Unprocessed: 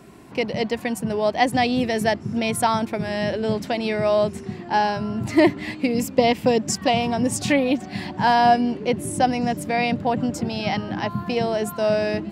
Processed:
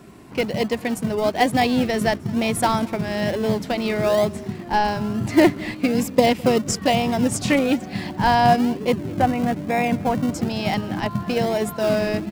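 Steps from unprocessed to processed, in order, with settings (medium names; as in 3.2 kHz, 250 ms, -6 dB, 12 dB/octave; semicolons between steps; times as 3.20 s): 8.98–10.30 s: low-pass 2.5 kHz 24 dB/octave; in parallel at -10 dB: decimation with a swept rate 41×, swing 60% 1.1 Hz; on the sum: delay 211 ms -24 dB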